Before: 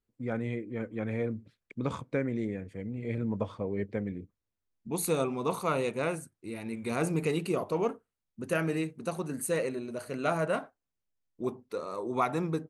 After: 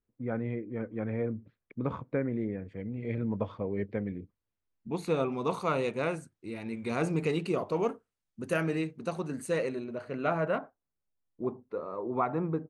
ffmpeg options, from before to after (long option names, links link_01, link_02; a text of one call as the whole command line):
ffmpeg -i in.wav -af "asetnsamples=nb_out_samples=441:pad=0,asendcmd='2.66 lowpass f 3400;5.32 lowpass f 6100;7.75 lowpass f 9900;8.63 lowpass f 5900;9.84 lowpass f 2700;10.58 lowpass f 1400',lowpass=1800" out.wav